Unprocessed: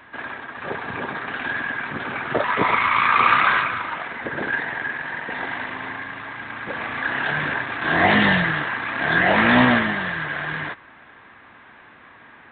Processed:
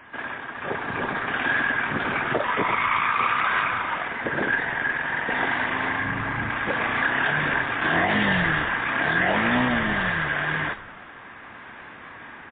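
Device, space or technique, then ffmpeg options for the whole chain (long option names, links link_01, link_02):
low-bitrate web radio: -filter_complex "[0:a]asplit=3[link_01][link_02][link_03];[link_01]afade=type=out:start_time=6.01:duration=0.02[link_04];[link_02]bass=frequency=250:gain=11,treble=frequency=4000:gain=-12,afade=type=in:start_time=6.01:duration=0.02,afade=type=out:start_time=6.49:duration=0.02[link_05];[link_03]afade=type=in:start_time=6.49:duration=0.02[link_06];[link_04][link_05][link_06]amix=inputs=3:normalize=0,asplit=7[link_07][link_08][link_09][link_10][link_11][link_12][link_13];[link_08]adelay=93,afreqshift=-88,volume=-17dB[link_14];[link_09]adelay=186,afreqshift=-176,volume=-21dB[link_15];[link_10]adelay=279,afreqshift=-264,volume=-25dB[link_16];[link_11]adelay=372,afreqshift=-352,volume=-29dB[link_17];[link_12]adelay=465,afreqshift=-440,volume=-33.1dB[link_18];[link_13]adelay=558,afreqshift=-528,volume=-37.1dB[link_19];[link_07][link_14][link_15][link_16][link_17][link_18][link_19]amix=inputs=7:normalize=0,dynaudnorm=framelen=820:gausssize=3:maxgain=6.5dB,alimiter=limit=-11.5dB:level=0:latency=1:release=306" -ar 8000 -c:a libmp3lame -b:a 24k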